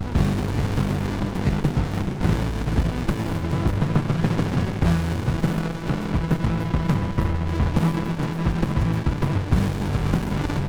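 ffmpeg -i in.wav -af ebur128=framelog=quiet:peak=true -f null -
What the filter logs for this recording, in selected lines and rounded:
Integrated loudness:
  I:         -23.6 LUFS
  Threshold: -33.6 LUFS
Loudness range:
  LRA:         0.7 LU
  Threshold: -43.6 LUFS
  LRA low:   -24.0 LUFS
  LRA high:  -23.3 LUFS
True peak:
  Peak:       -6.2 dBFS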